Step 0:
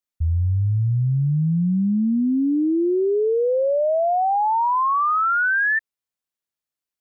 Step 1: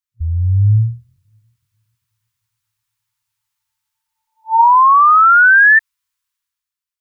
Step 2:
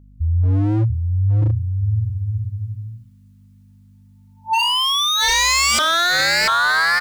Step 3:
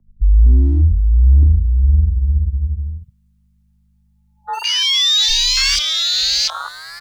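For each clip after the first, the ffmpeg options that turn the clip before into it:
ffmpeg -i in.wav -af "afftfilt=real='re*(1-between(b*sr/4096,110,890))':imag='im*(1-between(b*sr/4096,110,890))':win_size=4096:overlap=0.75,bandreject=frequency=225.4:width_type=h:width=4,bandreject=frequency=450.8:width_type=h:width=4,bandreject=frequency=676.2:width_type=h:width=4,bandreject=frequency=901.6:width_type=h:width=4,dynaudnorm=framelen=100:gausssize=13:maxgain=12.5dB" out.wav
ffmpeg -i in.wav -filter_complex "[0:a]aeval=exprs='val(0)+0.00562*(sin(2*PI*50*n/s)+sin(2*PI*2*50*n/s)/2+sin(2*PI*3*50*n/s)/3+sin(2*PI*4*50*n/s)/4+sin(2*PI*5*50*n/s)/5)':channel_layout=same,asplit=2[link_01][link_02];[link_02]aecho=0:1:690|1208|1596|1887|2105:0.631|0.398|0.251|0.158|0.1[link_03];[link_01][link_03]amix=inputs=2:normalize=0,aeval=exprs='0.251*(abs(mod(val(0)/0.251+3,4)-2)-1)':channel_layout=same" out.wav
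ffmpeg -i in.wav -filter_complex "[0:a]acrossover=split=140|3000[link_01][link_02][link_03];[link_02]acompressor=threshold=-32dB:ratio=4[link_04];[link_01][link_04][link_03]amix=inputs=3:normalize=0,afwtdn=0.0794,afreqshift=-33,volume=8dB" out.wav

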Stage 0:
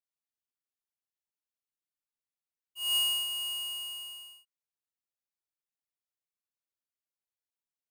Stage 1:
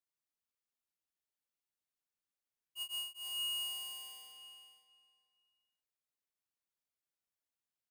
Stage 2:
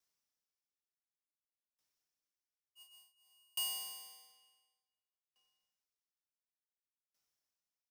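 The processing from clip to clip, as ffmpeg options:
ffmpeg -i in.wav -filter_complex "[0:a]aeval=exprs='0.0158*(abs(mod(val(0)/0.0158+3,4)-2)-1)':channel_layout=same,asplit=2[link_01][link_02];[link_02]adelay=465,lowpass=frequency=4400:poles=1,volume=-5.5dB,asplit=2[link_03][link_04];[link_04]adelay=465,lowpass=frequency=4400:poles=1,volume=0.23,asplit=2[link_05][link_06];[link_06]adelay=465,lowpass=frequency=4400:poles=1,volume=0.23[link_07];[link_01][link_03][link_05][link_07]amix=inputs=4:normalize=0,volume=-2dB" out.wav
ffmpeg -i in.wav -filter_complex "[0:a]equalizer=frequency=5500:width=3.3:gain=9.5,asplit=2[link_01][link_02];[link_02]adelay=35,volume=-5dB[link_03];[link_01][link_03]amix=inputs=2:normalize=0,aeval=exprs='val(0)*pow(10,-40*if(lt(mod(0.56*n/s,1),2*abs(0.56)/1000),1-mod(0.56*n/s,1)/(2*abs(0.56)/1000),(mod(0.56*n/s,1)-2*abs(0.56)/1000)/(1-2*abs(0.56)/1000))/20)':channel_layout=same,volume=6dB" out.wav

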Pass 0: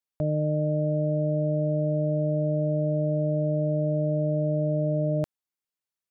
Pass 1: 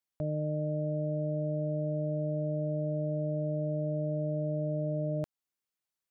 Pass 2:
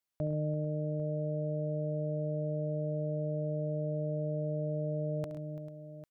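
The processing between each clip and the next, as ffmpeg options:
ffmpeg -i in.wav -af "alimiter=level_in=2.5dB:limit=-24dB:level=0:latency=1:release=193,volume=-2.5dB" out.wav
ffmpeg -i in.wav -af "aecho=1:1:70|106|130|338|443|798:0.211|0.188|0.2|0.15|0.126|0.178" out.wav

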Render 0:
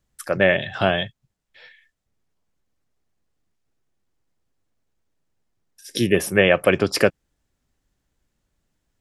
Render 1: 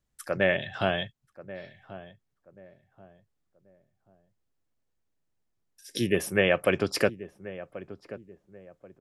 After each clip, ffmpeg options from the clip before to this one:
ffmpeg -i in.wav -filter_complex "[0:a]asplit=2[link_01][link_02];[link_02]adelay=1084,lowpass=frequency=1000:poles=1,volume=-14.5dB,asplit=2[link_03][link_04];[link_04]adelay=1084,lowpass=frequency=1000:poles=1,volume=0.35,asplit=2[link_05][link_06];[link_06]adelay=1084,lowpass=frequency=1000:poles=1,volume=0.35[link_07];[link_01][link_03][link_05][link_07]amix=inputs=4:normalize=0,volume=-7dB" out.wav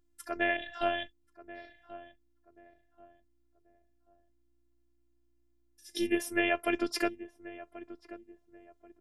ffmpeg -i in.wav -af "aeval=exprs='val(0)+0.000562*(sin(2*PI*60*n/s)+sin(2*PI*2*60*n/s)/2+sin(2*PI*3*60*n/s)/3+sin(2*PI*4*60*n/s)/4+sin(2*PI*5*60*n/s)/5)':channel_layout=same,afftfilt=real='hypot(re,im)*cos(PI*b)':imag='0':win_size=512:overlap=0.75,volume=-1dB" out.wav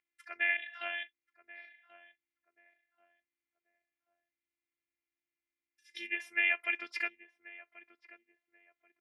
ffmpeg -i in.wav -af "bandpass=frequency=2200:width_type=q:width=5.4:csg=0,volume=8.5dB" out.wav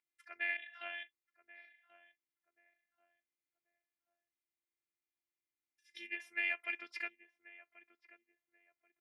ffmpeg -i in.wav -af "aeval=exprs='0.15*(cos(1*acos(clip(val(0)/0.15,-1,1)))-cos(1*PI/2))+0.0015*(cos(4*acos(clip(val(0)/0.15,-1,1)))-cos(4*PI/2))':channel_layout=same,volume=-6.5dB" out.wav

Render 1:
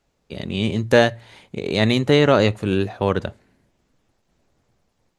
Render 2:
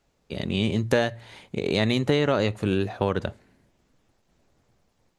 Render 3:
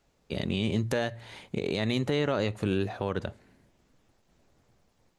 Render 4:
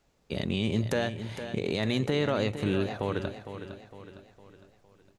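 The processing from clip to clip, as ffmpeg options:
ffmpeg -i in.wav -af "acompressor=threshold=-19dB:ratio=4" out.wav
ffmpeg -i in.wav -af "alimiter=limit=-17dB:level=0:latency=1:release=226" out.wav
ffmpeg -i in.wav -af "aecho=1:1:458|916|1374|1832|2290:0.299|0.137|0.0632|0.0291|0.0134" out.wav

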